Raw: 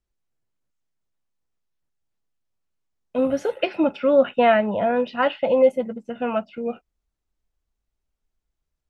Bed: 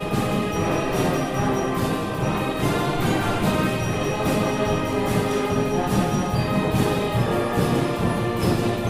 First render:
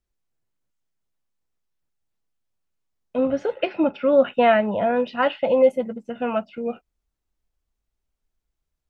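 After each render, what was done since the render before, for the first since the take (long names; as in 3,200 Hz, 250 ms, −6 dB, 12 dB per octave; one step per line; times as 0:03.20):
0:03.16–0:04.13: high-frequency loss of the air 140 metres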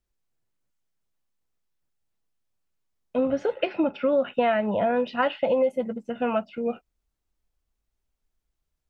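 downward compressor 6 to 1, threshold −19 dBFS, peak gain reduction 8.5 dB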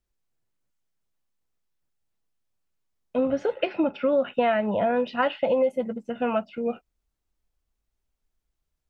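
no processing that can be heard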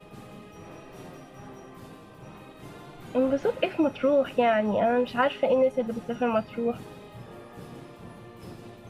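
mix in bed −22.5 dB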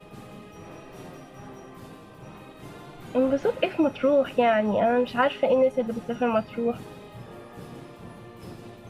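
level +1.5 dB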